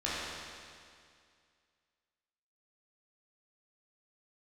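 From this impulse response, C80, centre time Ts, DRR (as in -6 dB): -1.5 dB, 155 ms, -9.5 dB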